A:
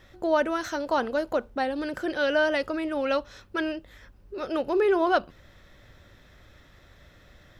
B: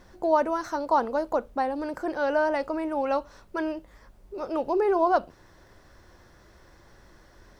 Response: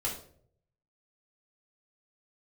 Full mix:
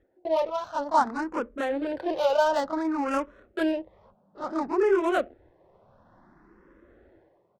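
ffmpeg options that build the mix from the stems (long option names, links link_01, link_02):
-filter_complex "[0:a]bass=frequency=250:gain=-2,treble=frequency=4000:gain=7,volume=-4dB[link_01];[1:a]highpass=frequency=180:width=0.5412,highpass=frequency=180:width=1.3066,dynaudnorm=framelen=120:gausssize=9:maxgain=13dB,volume=-1,adelay=28,volume=-7dB,asplit=2[link_02][link_03];[link_03]apad=whole_len=334806[link_04];[link_01][link_04]sidechaingate=range=-29dB:threshold=-52dB:ratio=16:detection=peak[link_05];[link_05][link_02]amix=inputs=2:normalize=0,adynamicsmooth=sensitivity=3.5:basefreq=910,asplit=2[link_06][link_07];[link_07]afreqshift=0.57[link_08];[link_06][link_08]amix=inputs=2:normalize=1"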